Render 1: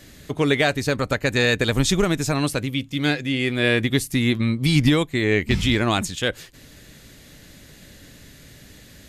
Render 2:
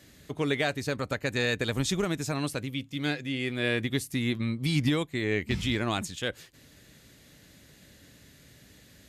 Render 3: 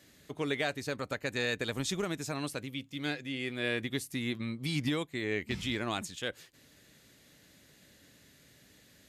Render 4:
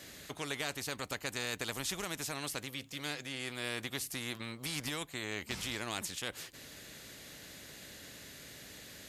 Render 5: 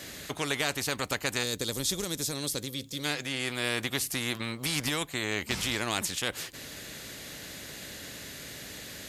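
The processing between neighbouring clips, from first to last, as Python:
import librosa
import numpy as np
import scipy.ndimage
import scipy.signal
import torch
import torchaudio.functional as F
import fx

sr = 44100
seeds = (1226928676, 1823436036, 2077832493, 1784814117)

y1 = scipy.signal.sosfilt(scipy.signal.butter(2, 55.0, 'highpass', fs=sr, output='sos'), x)
y1 = y1 * librosa.db_to_amplitude(-8.5)
y2 = fx.low_shelf(y1, sr, hz=130.0, db=-8.5)
y2 = y2 * librosa.db_to_amplitude(-4.0)
y3 = fx.spectral_comp(y2, sr, ratio=2.0)
y3 = y3 * librosa.db_to_amplitude(-1.5)
y4 = fx.spec_box(y3, sr, start_s=1.43, length_s=1.62, low_hz=600.0, high_hz=3200.0, gain_db=-10)
y4 = y4 * librosa.db_to_amplitude(8.0)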